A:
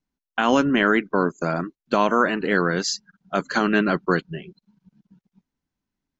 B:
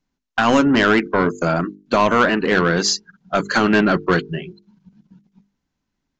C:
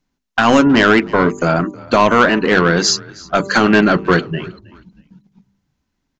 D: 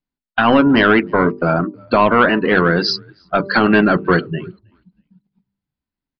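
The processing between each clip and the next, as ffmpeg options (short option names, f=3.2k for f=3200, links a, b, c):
-af "aresample=16000,asoftclip=type=tanh:threshold=-15dB,aresample=44100,bandreject=f=50:t=h:w=6,bandreject=f=100:t=h:w=6,bandreject=f=150:t=h:w=6,bandreject=f=200:t=h:w=6,bandreject=f=250:t=h:w=6,bandreject=f=300:t=h:w=6,bandreject=f=350:t=h:w=6,bandreject=f=400:t=h:w=6,bandreject=f=450:t=h:w=6,volume=7.5dB"
-filter_complex "[0:a]bandreject=f=195.3:t=h:w=4,bandreject=f=390.6:t=h:w=4,bandreject=f=585.9:t=h:w=4,bandreject=f=781.2:t=h:w=4,bandreject=f=976.5:t=h:w=4,bandreject=f=1.1718k:t=h:w=4,asplit=3[a][b][c];[b]adelay=317,afreqshift=-55,volume=-22dB[d];[c]adelay=634,afreqshift=-110,volume=-31.9dB[e];[a][d][e]amix=inputs=3:normalize=0,volume=4dB"
-af "afftdn=nr=14:nf=-24,aresample=11025,aresample=44100,volume=-1dB"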